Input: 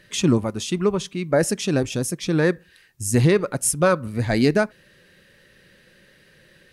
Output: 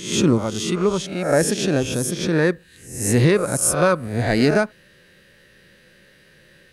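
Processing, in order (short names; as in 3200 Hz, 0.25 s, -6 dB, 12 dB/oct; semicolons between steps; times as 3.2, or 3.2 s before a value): spectral swells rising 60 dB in 0.57 s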